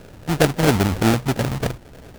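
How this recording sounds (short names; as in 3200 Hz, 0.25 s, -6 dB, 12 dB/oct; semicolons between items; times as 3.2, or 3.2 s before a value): phasing stages 12, 3.1 Hz, lowest notch 380–1200 Hz; aliases and images of a low sample rate 1100 Hz, jitter 20%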